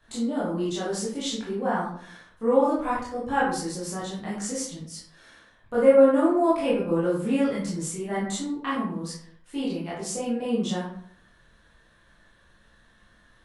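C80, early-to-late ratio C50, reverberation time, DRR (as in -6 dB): 6.5 dB, 2.0 dB, 0.60 s, -8.5 dB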